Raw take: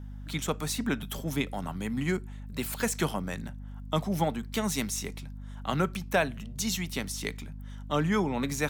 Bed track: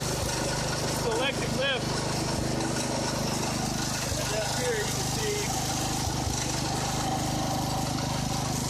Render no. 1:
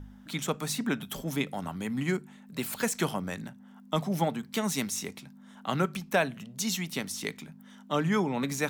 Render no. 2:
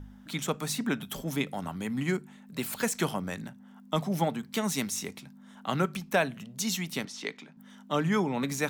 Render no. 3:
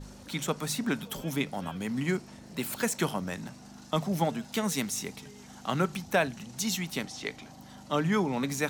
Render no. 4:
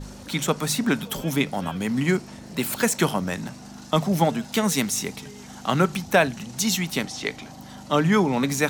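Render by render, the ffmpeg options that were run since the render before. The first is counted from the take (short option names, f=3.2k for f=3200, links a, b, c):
-af "bandreject=f=50:t=h:w=4,bandreject=f=100:t=h:w=4,bandreject=f=150:t=h:w=4"
-filter_complex "[0:a]asettb=1/sr,asplit=3[a][b][c];[a]atrim=end=7.054[d];[b]atrim=start=7.05:end=7.57,asetpts=PTS-STARTPTS,afade=t=in:d=0.004:c=qsin,afade=t=out:st=0.516:d=0.004:c=qsin,acrossover=split=230 6300:gain=0.141 1 0.0708[e][f][g];[e][f][g]amix=inputs=3:normalize=0[h];[c]atrim=start=7.566[i];[d][h]acrossfade=d=0.004:c1=hsin:c2=qsin[j];[j][i]acrossfade=d=0.004:c1=qsin:c2=hsin"
-filter_complex "[1:a]volume=-23dB[a];[0:a][a]amix=inputs=2:normalize=0"
-af "volume=7.5dB"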